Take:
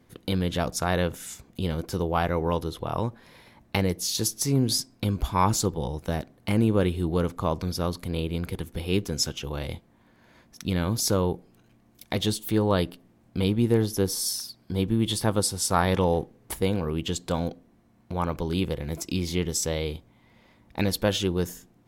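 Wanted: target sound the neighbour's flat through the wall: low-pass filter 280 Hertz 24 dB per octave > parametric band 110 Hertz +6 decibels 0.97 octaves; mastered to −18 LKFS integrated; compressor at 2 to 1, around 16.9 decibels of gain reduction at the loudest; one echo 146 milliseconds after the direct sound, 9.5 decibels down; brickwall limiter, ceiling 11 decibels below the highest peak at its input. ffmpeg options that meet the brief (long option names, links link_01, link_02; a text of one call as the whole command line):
ffmpeg -i in.wav -af "acompressor=threshold=-50dB:ratio=2,alimiter=level_in=8dB:limit=-24dB:level=0:latency=1,volume=-8dB,lowpass=frequency=280:width=0.5412,lowpass=frequency=280:width=1.3066,equalizer=frequency=110:width_type=o:width=0.97:gain=6,aecho=1:1:146:0.335,volume=25.5dB" out.wav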